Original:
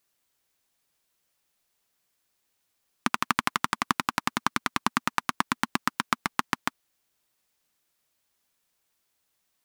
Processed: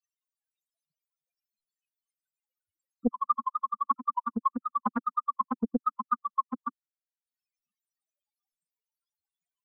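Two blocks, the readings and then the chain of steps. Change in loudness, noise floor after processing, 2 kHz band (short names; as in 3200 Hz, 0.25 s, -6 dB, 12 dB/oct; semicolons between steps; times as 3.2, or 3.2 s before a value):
-2.5 dB, under -85 dBFS, -21.5 dB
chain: loudest bins only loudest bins 2; transient shaper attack +9 dB, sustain -12 dB; Doppler distortion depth 0.55 ms; gain +3.5 dB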